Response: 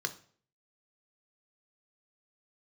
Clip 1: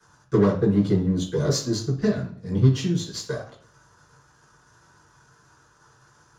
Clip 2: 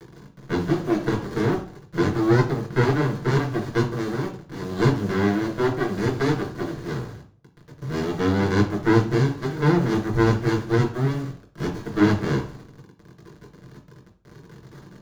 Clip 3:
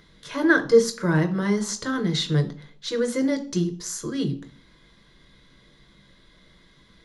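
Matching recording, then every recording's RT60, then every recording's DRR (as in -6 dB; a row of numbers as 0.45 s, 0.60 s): 3; 0.50 s, 0.50 s, 0.50 s; -5.0 dB, 0.0 dB, 7.5 dB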